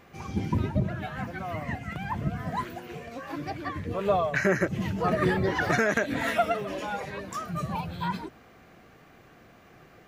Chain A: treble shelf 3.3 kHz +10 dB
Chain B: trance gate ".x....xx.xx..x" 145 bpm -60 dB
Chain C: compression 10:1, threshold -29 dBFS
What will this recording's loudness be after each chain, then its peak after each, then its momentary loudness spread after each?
-28.5 LUFS, -32.0 LUFS, -35.0 LUFS; -6.0 dBFS, -9.0 dBFS, -16.5 dBFS; 11 LU, 18 LU, 21 LU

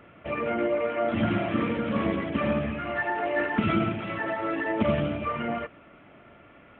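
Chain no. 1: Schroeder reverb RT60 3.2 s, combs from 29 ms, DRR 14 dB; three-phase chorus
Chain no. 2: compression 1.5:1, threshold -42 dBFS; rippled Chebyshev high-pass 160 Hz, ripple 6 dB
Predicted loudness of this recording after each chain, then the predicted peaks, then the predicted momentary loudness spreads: -30.5 LUFS, -36.5 LUFS; -13.5 dBFS, -23.5 dBFS; 6 LU, 18 LU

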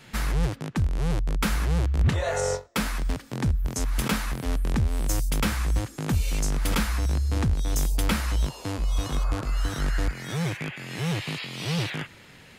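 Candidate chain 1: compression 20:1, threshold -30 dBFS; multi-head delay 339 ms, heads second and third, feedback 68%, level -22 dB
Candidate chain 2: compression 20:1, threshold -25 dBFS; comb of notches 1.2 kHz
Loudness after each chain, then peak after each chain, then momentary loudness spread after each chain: -36.0 LUFS, -34.5 LUFS; -18.0 dBFS, -16.5 dBFS; 3 LU, 5 LU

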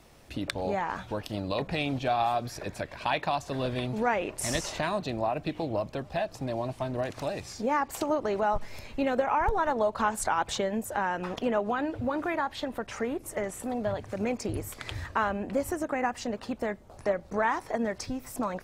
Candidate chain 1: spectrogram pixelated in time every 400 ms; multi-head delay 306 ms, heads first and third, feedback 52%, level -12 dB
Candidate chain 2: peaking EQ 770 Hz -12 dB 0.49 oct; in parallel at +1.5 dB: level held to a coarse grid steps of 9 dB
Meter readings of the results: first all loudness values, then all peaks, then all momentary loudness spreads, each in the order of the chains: -34.5 LUFS, -28.5 LUFS; -19.0 dBFS, -6.0 dBFS; 6 LU, 6 LU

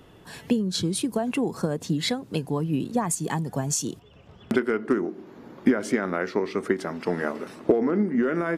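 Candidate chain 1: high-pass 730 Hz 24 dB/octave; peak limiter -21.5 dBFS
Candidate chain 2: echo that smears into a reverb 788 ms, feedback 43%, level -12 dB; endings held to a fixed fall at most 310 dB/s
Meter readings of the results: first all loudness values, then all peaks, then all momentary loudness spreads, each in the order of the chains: -36.5 LUFS, -26.5 LUFS; -21.5 dBFS, -6.5 dBFS; 10 LU, 9 LU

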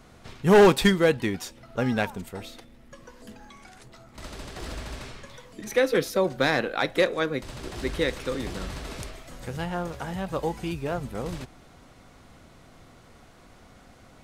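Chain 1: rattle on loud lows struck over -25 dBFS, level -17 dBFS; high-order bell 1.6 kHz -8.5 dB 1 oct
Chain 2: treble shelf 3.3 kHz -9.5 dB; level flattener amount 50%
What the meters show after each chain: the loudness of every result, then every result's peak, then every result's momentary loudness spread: -26.0 LUFS, -23.0 LUFS; -8.0 dBFS, -5.0 dBFS; 20 LU, 15 LU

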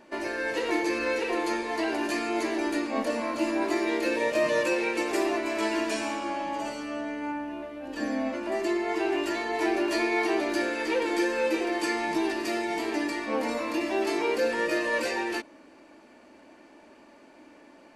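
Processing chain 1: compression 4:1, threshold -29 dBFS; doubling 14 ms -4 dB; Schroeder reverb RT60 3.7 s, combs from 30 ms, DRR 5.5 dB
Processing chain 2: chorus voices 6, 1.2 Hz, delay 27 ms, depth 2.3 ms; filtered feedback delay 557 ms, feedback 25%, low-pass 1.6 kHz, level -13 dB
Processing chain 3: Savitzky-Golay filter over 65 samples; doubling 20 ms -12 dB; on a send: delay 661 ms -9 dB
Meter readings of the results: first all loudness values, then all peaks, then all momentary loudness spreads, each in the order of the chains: -30.0 LUFS, -31.0 LUFS, -29.0 LUFS; -17.0 dBFS, -16.0 dBFS, -14.5 dBFS; 6 LU, 8 LU, 7 LU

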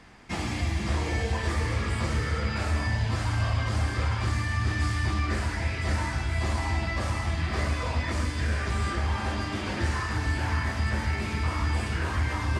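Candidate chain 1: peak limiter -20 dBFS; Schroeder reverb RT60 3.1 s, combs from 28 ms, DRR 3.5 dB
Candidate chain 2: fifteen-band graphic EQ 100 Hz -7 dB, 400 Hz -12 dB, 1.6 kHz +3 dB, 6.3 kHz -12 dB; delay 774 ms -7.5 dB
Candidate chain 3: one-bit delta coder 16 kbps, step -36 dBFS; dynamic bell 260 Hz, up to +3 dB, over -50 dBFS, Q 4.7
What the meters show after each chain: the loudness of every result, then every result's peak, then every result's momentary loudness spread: -27.5 LUFS, -30.0 LUFS, -29.0 LUFS; -15.0 dBFS, -16.0 dBFS, -16.0 dBFS; 2 LU, 2 LU, 2 LU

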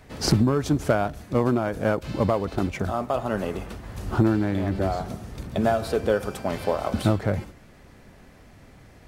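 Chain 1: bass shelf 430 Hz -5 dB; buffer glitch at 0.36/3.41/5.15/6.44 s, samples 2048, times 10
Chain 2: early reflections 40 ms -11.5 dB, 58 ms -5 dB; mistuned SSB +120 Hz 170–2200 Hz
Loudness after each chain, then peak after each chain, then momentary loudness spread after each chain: -28.0 LUFS, -25.0 LUFS; -9.5 dBFS, -8.0 dBFS; 6 LU, 11 LU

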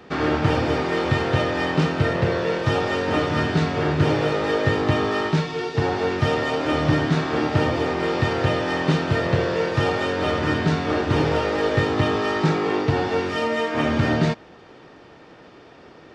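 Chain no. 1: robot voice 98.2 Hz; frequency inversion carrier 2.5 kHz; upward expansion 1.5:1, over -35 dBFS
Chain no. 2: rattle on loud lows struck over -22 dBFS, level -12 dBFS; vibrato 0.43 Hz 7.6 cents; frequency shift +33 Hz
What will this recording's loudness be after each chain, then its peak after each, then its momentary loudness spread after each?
-24.5 LUFS, -21.5 LUFS; -4.5 dBFS, -3.5 dBFS; 5 LU, 3 LU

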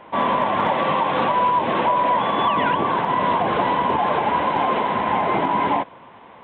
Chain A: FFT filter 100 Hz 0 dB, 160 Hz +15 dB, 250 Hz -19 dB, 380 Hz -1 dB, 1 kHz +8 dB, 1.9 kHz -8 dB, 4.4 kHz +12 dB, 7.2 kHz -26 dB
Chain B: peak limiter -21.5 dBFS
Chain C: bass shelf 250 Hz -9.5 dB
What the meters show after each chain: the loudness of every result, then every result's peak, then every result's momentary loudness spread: -14.0 LUFS, -29.0 LUFS, -21.0 LUFS; -2.0 dBFS, -21.5 dBFS, -9.5 dBFS; 3 LU, 2 LU, 2 LU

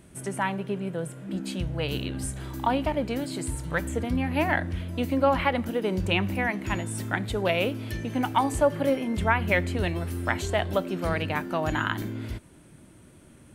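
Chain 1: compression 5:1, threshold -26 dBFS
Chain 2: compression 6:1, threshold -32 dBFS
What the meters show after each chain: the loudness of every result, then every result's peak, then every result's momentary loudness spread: -31.5 LUFS, -36.0 LUFS; -13.0 dBFS, -18.0 dBFS; 4 LU, 3 LU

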